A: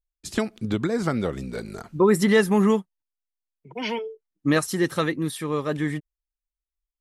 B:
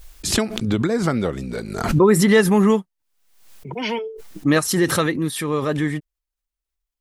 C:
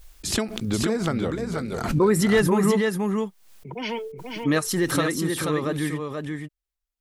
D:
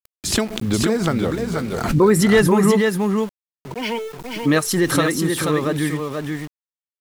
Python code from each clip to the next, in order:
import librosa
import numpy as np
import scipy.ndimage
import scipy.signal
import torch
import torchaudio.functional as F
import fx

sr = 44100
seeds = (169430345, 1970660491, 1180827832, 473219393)

y1 = fx.pre_swell(x, sr, db_per_s=63.0)
y1 = y1 * librosa.db_to_amplitude(3.5)
y2 = y1 + 10.0 ** (-4.5 / 20.0) * np.pad(y1, (int(483 * sr / 1000.0), 0))[:len(y1)]
y2 = y2 * librosa.db_to_amplitude(-5.0)
y3 = np.where(np.abs(y2) >= 10.0 ** (-38.5 / 20.0), y2, 0.0)
y3 = y3 * librosa.db_to_amplitude(5.0)